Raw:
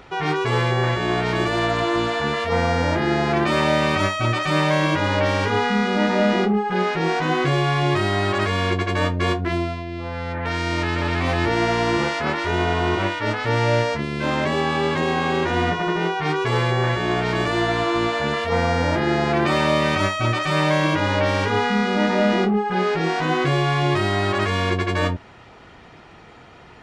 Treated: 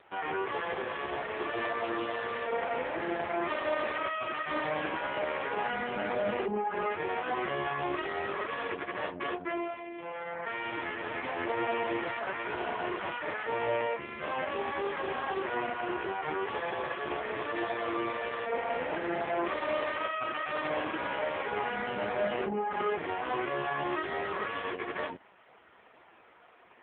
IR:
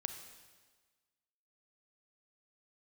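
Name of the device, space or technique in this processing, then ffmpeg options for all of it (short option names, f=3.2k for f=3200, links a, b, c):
telephone: -af "highpass=370,lowpass=3.5k,asoftclip=type=tanh:threshold=-13dB,volume=-6dB" -ar 8000 -c:a libopencore_amrnb -b:a 4750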